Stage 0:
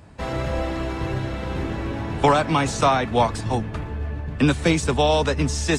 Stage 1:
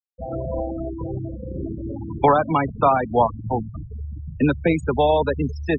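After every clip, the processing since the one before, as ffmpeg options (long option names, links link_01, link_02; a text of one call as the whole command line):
ffmpeg -i in.wav -af "afftfilt=real='re*gte(hypot(re,im),0.141)':imag='im*gte(hypot(re,im),0.141)':win_size=1024:overlap=0.75,lowpass=frequency=1700:poles=1,lowshelf=frequency=240:gain=-7.5,volume=3.5dB" out.wav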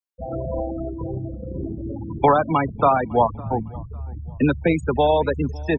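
ffmpeg -i in.wav -filter_complex "[0:a]asplit=2[link_01][link_02];[link_02]adelay=555,lowpass=frequency=3900:poles=1,volume=-23.5dB,asplit=2[link_03][link_04];[link_04]adelay=555,lowpass=frequency=3900:poles=1,volume=0.35[link_05];[link_01][link_03][link_05]amix=inputs=3:normalize=0" out.wav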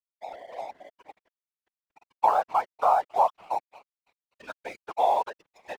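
ffmpeg -i in.wav -af "highpass=frequency=790:width_type=q:width=5.1,aeval=exprs='sgn(val(0))*max(abs(val(0))-0.0282,0)':channel_layout=same,afftfilt=real='hypot(re,im)*cos(2*PI*random(0))':imag='hypot(re,im)*sin(2*PI*random(1))':win_size=512:overlap=0.75,volume=-6.5dB" out.wav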